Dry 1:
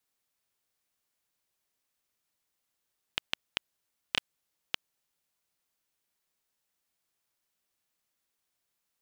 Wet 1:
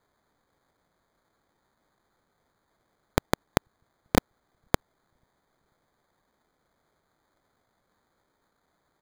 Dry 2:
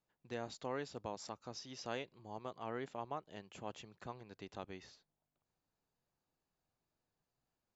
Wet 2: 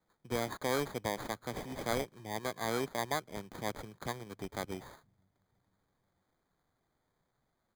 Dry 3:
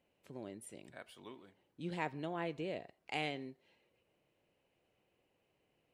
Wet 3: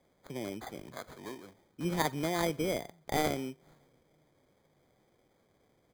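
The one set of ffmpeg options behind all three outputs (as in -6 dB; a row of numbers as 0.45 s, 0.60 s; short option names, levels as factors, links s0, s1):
-filter_complex "[0:a]acrossover=split=190[s0][s1];[s0]aecho=1:1:488|976|1464:0.0631|0.0334|0.0177[s2];[s1]acrusher=samples=16:mix=1:aa=0.000001[s3];[s2][s3]amix=inputs=2:normalize=0,volume=2.66"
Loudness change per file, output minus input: +7.0 LU, +8.5 LU, +7.5 LU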